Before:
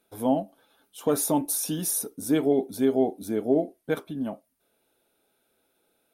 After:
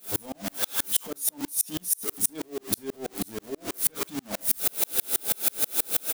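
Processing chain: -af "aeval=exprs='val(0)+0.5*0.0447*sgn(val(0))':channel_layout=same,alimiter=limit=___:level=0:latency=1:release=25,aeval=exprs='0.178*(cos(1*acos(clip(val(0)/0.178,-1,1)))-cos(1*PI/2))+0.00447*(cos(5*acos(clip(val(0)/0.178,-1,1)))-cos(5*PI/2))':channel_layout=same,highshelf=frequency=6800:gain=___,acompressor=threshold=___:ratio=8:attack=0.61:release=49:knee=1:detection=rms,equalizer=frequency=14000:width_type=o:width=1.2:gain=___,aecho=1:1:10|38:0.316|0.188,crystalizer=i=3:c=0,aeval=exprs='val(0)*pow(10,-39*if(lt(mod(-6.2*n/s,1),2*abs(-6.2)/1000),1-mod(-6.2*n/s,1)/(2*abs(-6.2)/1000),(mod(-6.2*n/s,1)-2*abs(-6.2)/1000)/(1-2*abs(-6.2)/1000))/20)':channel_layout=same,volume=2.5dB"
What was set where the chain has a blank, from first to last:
-15dB, 3.5, -27dB, -5.5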